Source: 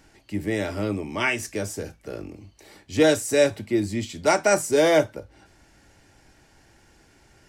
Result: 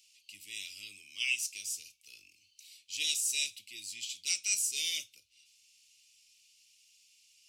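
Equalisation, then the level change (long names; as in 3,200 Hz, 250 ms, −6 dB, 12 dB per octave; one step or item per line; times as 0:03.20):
elliptic high-pass filter 2,600 Hz, stop band 40 dB
0.0 dB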